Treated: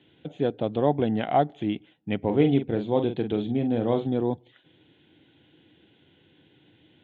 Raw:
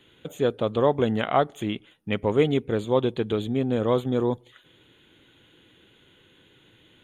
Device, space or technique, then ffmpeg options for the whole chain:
guitar cabinet: -filter_complex "[0:a]highpass=78,equalizer=frequency=89:width_type=q:width=4:gain=7,equalizer=frequency=150:width_type=q:width=4:gain=7,equalizer=frequency=210:width_type=q:width=4:gain=3,equalizer=frequency=300:width_type=q:width=4:gain=8,equalizer=frequency=740:width_type=q:width=4:gain=8,equalizer=frequency=1200:width_type=q:width=4:gain=-9,lowpass=frequency=4000:width=0.5412,lowpass=frequency=4000:width=1.3066,asettb=1/sr,asplit=3[link_01][link_02][link_03];[link_01]atrim=end=2.204[link_04];[link_02]atrim=start=2.2:end=4.07,asetpts=PTS-STARTPTS,afade=type=in:duration=0.004:curve=qsin,afade=type=out:start_time=1.866:duration=0.004:curve=qsin,asplit=2[link_05][link_06];[link_06]adelay=43,volume=-8dB[link_07];[link_05][link_07]amix=inputs=2:normalize=0,atrim=end_sample=82467[link_08];[link_03]atrim=start=4.066[link_09];[link_04][link_08]acrossfade=duration=0.004:curve1=hsin:curve2=qsin[link_10];[link_10][link_09]acrossfade=duration=0.004:curve1=qsin:curve2=hsin,volume=-4.5dB"

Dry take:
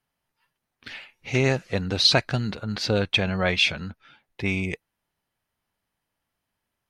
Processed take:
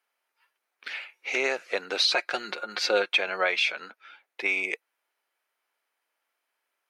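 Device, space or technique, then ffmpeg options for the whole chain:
laptop speaker: -filter_complex "[0:a]highpass=frequency=390:width=0.5412,highpass=frequency=390:width=1.3066,equalizer=frequency=1400:width_type=o:width=0.47:gain=5,equalizer=frequency=2300:width_type=o:width=0.33:gain=6,alimiter=limit=-13.5dB:level=0:latency=1:release=182,asettb=1/sr,asplit=3[link_01][link_02][link_03];[link_01]atrim=end=2.144[link_04];[link_02]atrim=start=2.14:end=3.21,asetpts=PTS-STARTPTS,afade=type=in:duration=0.004:curve=qsin,afade=type=out:start_time=1.066:duration=0.004:curve=qsin,aecho=1:1:5.6:0.55,atrim=end_sample=47187[link_05];[link_03]atrim=start=3.206[link_06];[link_04][link_05]acrossfade=duration=0.004:curve1=hsin:curve2=qsin[link_07];[link_07][link_06]acrossfade=duration=0.004:curve1=qsin:curve2=hsin"

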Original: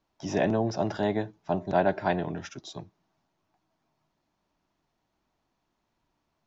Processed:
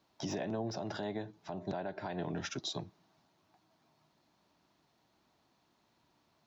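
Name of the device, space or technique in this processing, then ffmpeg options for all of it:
broadcast voice chain: -af "highpass=86,deesser=0.95,acompressor=threshold=-38dB:ratio=4,equalizer=frequency=4100:width_type=o:width=0.54:gain=5,alimiter=level_in=8.5dB:limit=-24dB:level=0:latency=1:release=123,volume=-8.5dB,volume=4.5dB"

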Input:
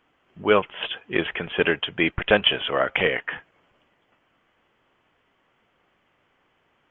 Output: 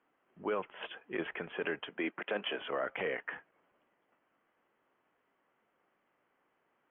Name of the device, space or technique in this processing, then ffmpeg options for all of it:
DJ mixer with the lows and highs turned down: -filter_complex "[0:a]asettb=1/sr,asplit=3[link_01][link_02][link_03];[link_01]atrim=end=1.894[link_04];[link_02]atrim=start=1.89:end=2.58,asetpts=PTS-STARTPTS,afade=type=in:duration=0.004:curve=qsin,afade=type=out:start_time=0.686:duration=0.004:curve=qsin,highpass=frequency=200:width=0.5412,highpass=frequency=200:width=1.3066[link_05];[link_03]atrim=start=2.576[link_06];[link_04][link_05]acrossfade=duration=0.004:curve1=hsin:curve2=qsin[link_07];[link_07][link_06]acrossfade=duration=0.004:curve1=qsin:curve2=hsin,acrossover=split=180 2400:gain=0.2 1 0.1[link_08][link_09][link_10];[link_08][link_09][link_10]amix=inputs=3:normalize=0,alimiter=limit=-16.5dB:level=0:latency=1:release=27,volume=-8.5dB"

